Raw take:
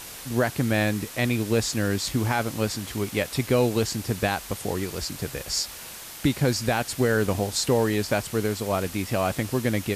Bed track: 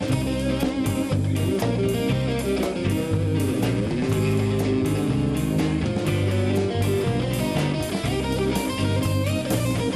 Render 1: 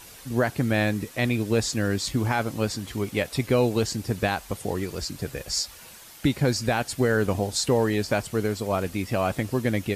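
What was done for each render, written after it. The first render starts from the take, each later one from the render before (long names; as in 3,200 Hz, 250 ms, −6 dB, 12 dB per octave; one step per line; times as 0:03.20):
broadband denoise 8 dB, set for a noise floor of −40 dBFS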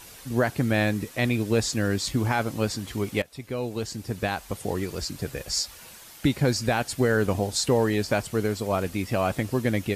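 0:03.22–0:04.74: fade in, from −17 dB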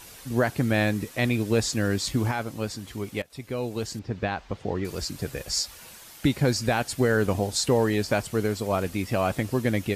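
0:02.31–0:03.30: clip gain −4.5 dB
0:03.99–0:04.85: high-frequency loss of the air 180 metres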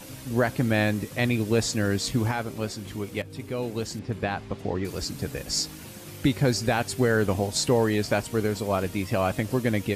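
mix in bed track −20.5 dB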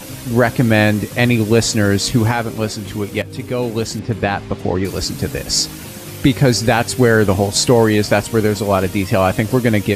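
level +10.5 dB
brickwall limiter −2 dBFS, peak gain reduction 1.5 dB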